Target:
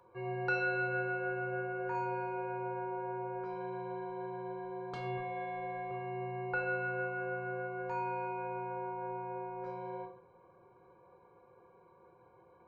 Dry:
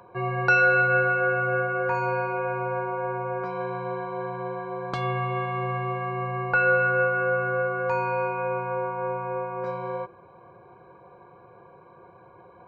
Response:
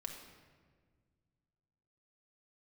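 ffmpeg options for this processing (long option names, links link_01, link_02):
-filter_complex "[0:a]asettb=1/sr,asplit=3[link_01][link_02][link_03];[link_01]atrim=end=5.174[link_04];[link_02]atrim=start=5.17:end=5.91,asetpts=PTS-STARTPTS,afade=type=in:duration=0.004:curve=qsin,afade=type=out:start_time=0.736:duration=0.004:curve=qsin,aecho=1:1:3.8:0.72,atrim=end_sample=32634[link_05];[link_03]atrim=start=5.906[link_06];[link_04][link_05]acrossfade=duration=0.004:curve1=hsin:curve2=qsin[link_07];[link_07][link_06]acrossfade=duration=0.004:curve1=qsin:curve2=hsin[link_08];[1:a]atrim=start_sample=2205,afade=type=out:start_time=0.35:duration=0.01,atrim=end_sample=15876,asetrate=88200,aresample=44100[link_09];[link_08][link_09]afir=irnorm=-1:irlink=0,volume=-4dB"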